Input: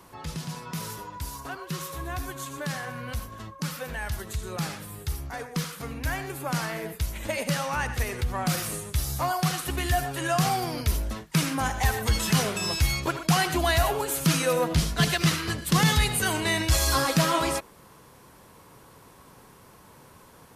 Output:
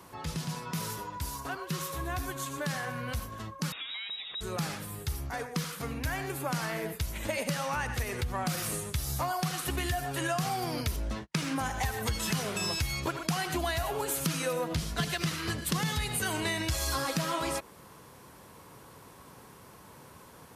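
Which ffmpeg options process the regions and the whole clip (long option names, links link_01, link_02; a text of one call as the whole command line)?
ffmpeg -i in.wav -filter_complex "[0:a]asettb=1/sr,asplit=3[link_01][link_02][link_03];[link_01]atrim=end=3.724[link_04];[link_02]atrim=start=3.72:end=4.41,asetpts=PTS-STARTPTS,afade=type=in:duration=0.004:curve=qsin,afade=type=out:start_time=0.686:duration=0.004:curve=qsin,acompressor=threshold=-35dB:ratio=5:attack=3.2:release=140:knee=1:detection=peak,lowpass=frequency=3300:width_type=q:width=0.5098,lowpass=frequency=3300:width_type=q:width=0.6013,lowpass=frequency=3300:width_type=q:width=0.9,lowpass=frequency=3300:width_type=q:width=2.563,afreqshift=-3900[link_05];[link_03]atrim=start=4.406[link_06];[link_04][link_05]acrossfade=duration=0.004:curve1=hsin:curve2=qsin[link_07];[link_07][link_06]acrossfade=duration=0.004:curve1=qsin:curve2=hsin,asettb=1/sr,asplit=3[link_08][link_09][link_10];[link_08]atrim=end=10.964[link_11];[link_09]atrim=start=10.96:end=11.56,asetpts=PTS-STARTPTS,afade=type=in:duration=0.004:curve=qsin,afade=type=out:start_time=0.596:duration=0.004:curve=qsin,agate=range=-30dB:threshold=-44dB:ratio=16:release=100:detection=peak,adynamicsmooth=sensitivity=5.5:basefreq=7500,asplit=2[link_12][link_13];[link_13]adelay=15,volume=-11dB[link_14];[link_12][link_14]amix=inputs=2:normalize=0,atrim=end_sample=26460[link_15];[link_10]atrim=start=11.556[link_16];[link_11][link_15]acrossfade=duration=0.004:curve1=hsin:curve2=qsin[link_17];[link_17][link_16]acrossfade=duration=0.004:curve1=qsin:curve2=hsin,highpass=48,acompressor=threshold=-28dB:ratio=6" out.wav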